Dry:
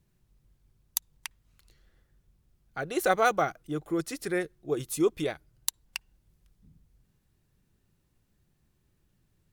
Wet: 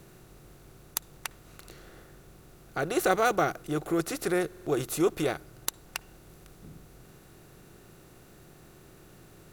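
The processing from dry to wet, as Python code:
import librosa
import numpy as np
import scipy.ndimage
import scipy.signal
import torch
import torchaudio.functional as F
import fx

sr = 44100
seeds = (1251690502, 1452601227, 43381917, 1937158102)

y = fx.bin_compress(x, sr, power=0.6)
y = fx.low_shelf(y, sr, hz=220.0, db=5.5)
y = fx.buffer_glitch(y, sr, at_s=(4.48,), block=2048, repeats=3)
y = y * librosa.db_to_amplitude(-3.0)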